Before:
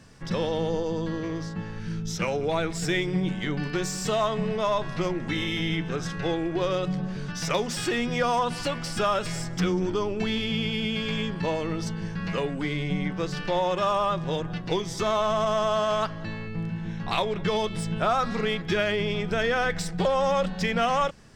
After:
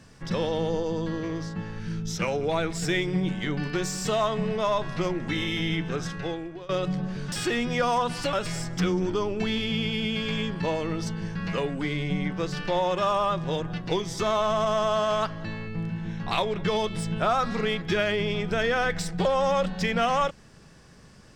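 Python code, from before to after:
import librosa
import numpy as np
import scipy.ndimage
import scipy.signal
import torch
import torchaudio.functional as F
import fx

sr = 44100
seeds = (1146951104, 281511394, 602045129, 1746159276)

y = fx.edit(x, sr, fx.fade_out_to(start_s=6.0, length_s=0.69, floor_db=-21.5),
    fx.cut(start_s=7.32, length_s=0.41),
    fx.cut(start_s=8.74, length_s=0.39), tone=tone)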